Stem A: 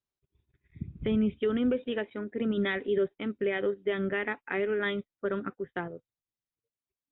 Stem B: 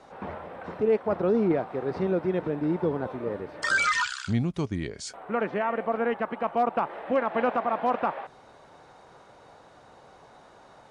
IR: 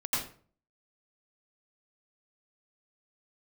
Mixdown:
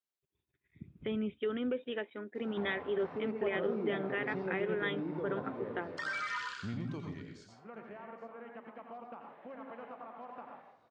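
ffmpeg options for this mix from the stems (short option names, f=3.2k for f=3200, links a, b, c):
-filter_complex "[0:a]highpass=f=330:p=1,volume=-4dB[a];[1:a]lowpass=4.7k,acompressor=threshold=-27dB:ratio=3,highpass=86,adelay=2350,volume=-12.5dB,afade=t=out:st=6.83:d=0.52:silence=0.334965,asplit=3[b][c][d];[c]volume=-5.5dB[e];[d]volume=-20.5dB[f];[2:a]atrim=start_sample=2205[g];[e][g]afir=irnorm=-1:irlink=0[h];[f]aecho=0:1:825:1[i];[a][b][h][i]amix=inputs=4:normalize=0"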